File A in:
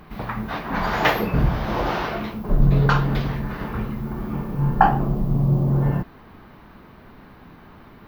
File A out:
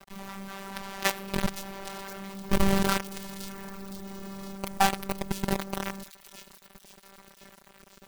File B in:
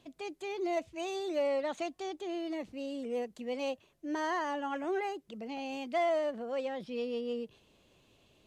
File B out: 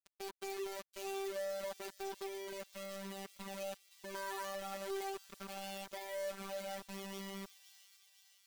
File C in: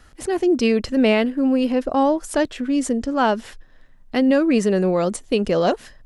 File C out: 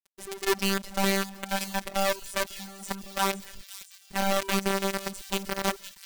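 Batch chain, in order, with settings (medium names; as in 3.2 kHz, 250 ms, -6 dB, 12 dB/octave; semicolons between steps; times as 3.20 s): companded quantiser 2-bit; robot voice 195 Hz; on a send: feedback echo behind a high-pass 515 ms, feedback 60%, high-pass 4.1 kHz, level -9 dB; on the sum: trim -12.5 dB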